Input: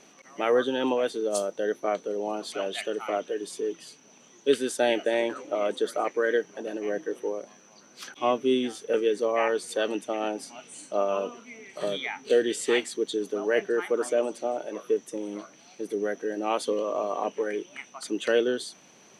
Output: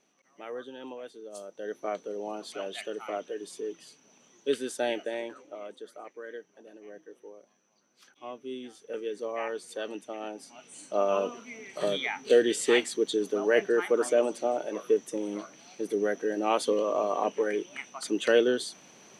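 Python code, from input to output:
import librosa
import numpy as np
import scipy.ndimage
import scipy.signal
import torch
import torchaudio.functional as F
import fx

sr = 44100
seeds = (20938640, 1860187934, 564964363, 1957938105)

y = fx.gain(x, sr, db=fx.line((1.34, -16.0), (1.82, -5.5), (4.87, -5.5), (5.83, -17.0), (8.25, -17.0), (9.26, -8.5), (10.37, -8.5), (11.13, 1.0)))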